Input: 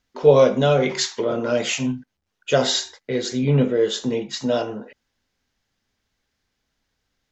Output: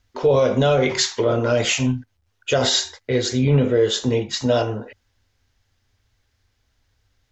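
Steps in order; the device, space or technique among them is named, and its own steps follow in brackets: car stereo with a boomy subwoofer (resonant low shelf 130 Hz +7 dB, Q 3; peak limiter -12.5 dBFS, peak gain reduction 9.5 dB); trim +4 dB

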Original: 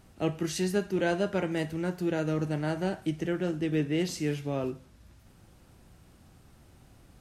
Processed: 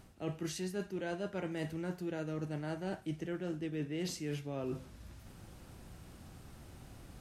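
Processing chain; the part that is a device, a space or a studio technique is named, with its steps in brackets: compression on the reversed sound (reverse; compression 5:1, threshold -40 dBFS, peak gain reduction 16 dB; reverse); trim +3.5 dB

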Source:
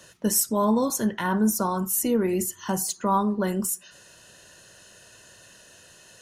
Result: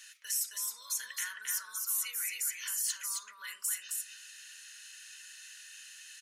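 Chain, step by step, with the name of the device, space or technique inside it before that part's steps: laptop speaker (high-pass 330 Hz 24 dB/octave; peaking EQ 720 Hz +6 dB 0.59 oct; peaking EQ 2.3 kHz +7 dB 0.24 oct; peak limiter -22.5 dBFS, peak gain reduction 13 dB); inverse Chebyshev high-pass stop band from 820 Hz, stop band 40 dB; delay 267 ms -3.5 dB

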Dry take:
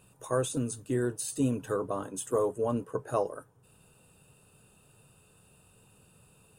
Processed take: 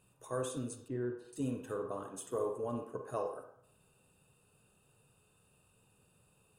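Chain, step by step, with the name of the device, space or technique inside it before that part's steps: 0.88–1.33 s: distance through air 470 m; filtered reverb send (on a send: high-pass 320 Hz 12 dB/octave + low-pass 4.4 kHz 12 dB/octave + reverberation RT60 0.70 s, pre-delay 41 ms, DRR 4.5 dB); on the sum: trim -9 dB

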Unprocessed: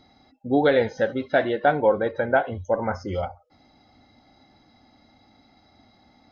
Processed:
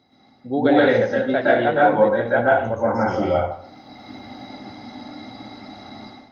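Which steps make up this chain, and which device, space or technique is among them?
far-field microphone of a smart speaker (reverberation RT60 0.55 s, pre-delay 112 ms, DRR -7 dB; high-pass 89 Hz 24 dB/octave; level rider gain up to 16 dB; trim -3.5 dB; Opus 32 kbps 48 kHz)

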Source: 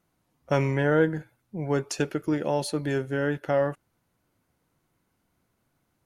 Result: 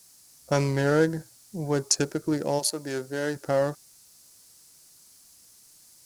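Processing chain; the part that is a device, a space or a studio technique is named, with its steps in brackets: local Wiener filter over 15 samples; 2.58–3.35 s: high-pass 650 Hz -> 260 Hz 6 dB/octave; plain cassette with noise reduction switched in (tape noise reduction on one side only decoder only; wow and flutter; white noise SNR 35 dB); high-order bell 7.2 kHz +13.5 dB

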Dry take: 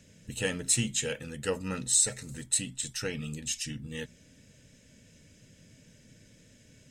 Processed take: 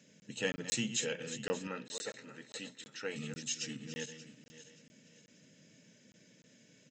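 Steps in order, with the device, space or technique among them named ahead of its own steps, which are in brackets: backward echo that repeats 290 ms, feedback 55%, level -11 dB; call with lost packets (high-pass 160 Hz 24 dB/octave; resampled via 16 kHz; lost packets random); 1.67–3.16 s: tone controls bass -11 dB, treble -13 dB; trim -3.5 dB

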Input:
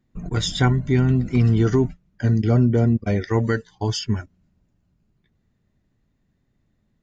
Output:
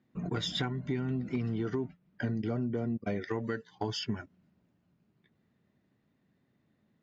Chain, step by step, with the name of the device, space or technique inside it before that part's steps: AM radio (band-pass 160–4100 Hz; compression 8:1, threshold -29 dBFS, peak gain reduction 15 dB; saturation -19 dBFS, distortion -26 dB); 1.57–2.35 s: low-pass 5.6 kHz 12 dB/octave

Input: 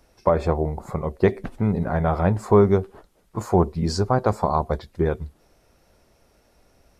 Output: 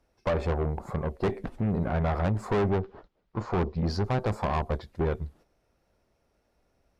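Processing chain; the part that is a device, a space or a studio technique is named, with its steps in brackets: 2.70–4.04 s: low-pass 5.2 kHz 24 dB/octave; tube preamp driven hard (valve stage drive 22 dB, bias 0.5; treble shelf 4.9 kHz -8 dB); gate -52 dBFS, range -9 dB

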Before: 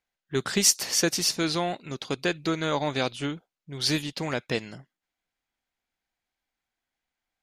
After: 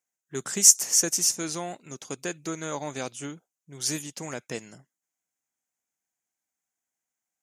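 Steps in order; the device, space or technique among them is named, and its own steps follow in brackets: budget condenser microphone (high-pass 110 Hz; resonant high shelf 5.3 kHz +8.5 dB, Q 3); trim -6 dB

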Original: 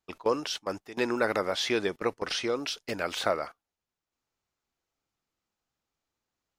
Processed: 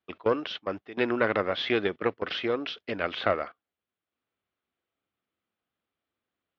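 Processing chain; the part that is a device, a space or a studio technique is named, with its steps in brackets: guitar amplifier (valve stage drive 14 dB, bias 0.75; tone controls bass +1 dB, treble -11 dB; cabinet simulation 100–4100 Hz, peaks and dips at 140 Hz -8 dB, 890 Hz -7 dB, 3.3 kHz +4 dB); trim +6 dB

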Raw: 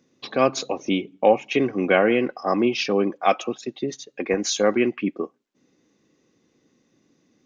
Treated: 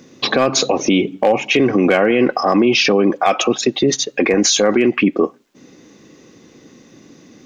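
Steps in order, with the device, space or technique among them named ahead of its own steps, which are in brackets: loud club master (compression 2:1, threshold -24 dBFS, peak gain reduction 8 dB; hard clipper -14.5 dBFS, distortion -25 dB; loudness maximiser +24 dB); trim -4.5 dB

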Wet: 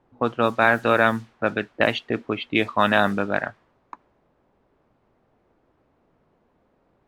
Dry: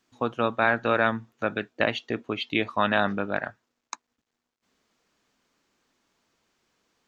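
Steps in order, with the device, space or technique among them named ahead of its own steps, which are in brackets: cassette deck with a dynamic noise filter (white noise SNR 26 dB; level-controlled noise filter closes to 630 Hz, open at -19 dBFS); trim +4.5 dB

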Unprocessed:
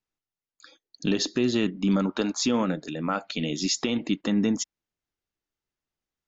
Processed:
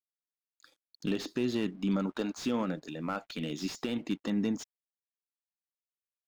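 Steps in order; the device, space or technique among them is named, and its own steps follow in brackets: early transistor amplifier (crossover distortion -57 dBFS; slew-rate limiter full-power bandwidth 97 Hz); trim -6.5 dB

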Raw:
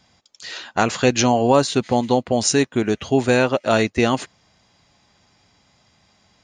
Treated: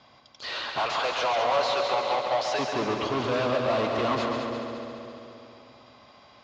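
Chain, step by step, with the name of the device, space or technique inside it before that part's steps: 0.79–2.59 s: high-pass 590 Hz 24 dB/octave; analogue delay pedal into a guitar amplifier (bucket-brigade echo 263 ms, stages 1024, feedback 58%, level -19.5 dB; valve stage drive 32 dB, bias 0.45; cabinet simulation 78–4600 Hz, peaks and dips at 86 Hz -10 dB, 180 Hz -9 dB, 600 Hz +6 dB, 1.1 kHz +9 dB, 1.8 kHz -3 dB); multi-head delay 69 ms, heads second and third, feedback 66%, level -6.5 dB; trim +4.5 dB

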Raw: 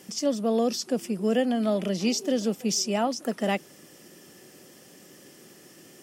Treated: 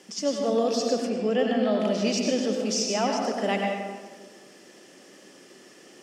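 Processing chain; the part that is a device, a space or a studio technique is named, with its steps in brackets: supermarket ceiling speaker (band-pass 270–7000 Hz; reverberation RT60 1.5 s, pre-delay 85 ms, DRR 0.5 dB); 1.09–1.80 s: low-pass 6.1 kHz 12 dB/octave

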